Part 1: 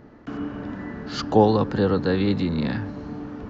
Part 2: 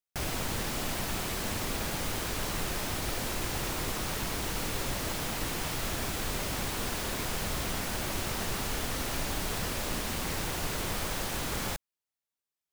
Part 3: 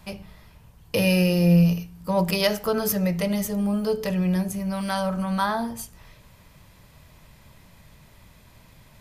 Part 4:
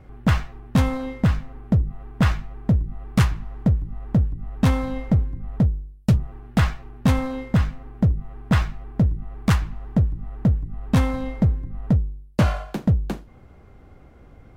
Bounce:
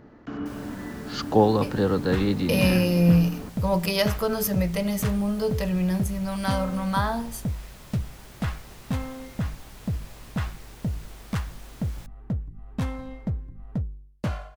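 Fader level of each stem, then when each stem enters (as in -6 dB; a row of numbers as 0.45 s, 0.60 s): -2.0 dB, -15.0 dB, -1.5 dB, -10.0 dB; 0.00 s, 0.30 s, 1.55 s, 1.85 s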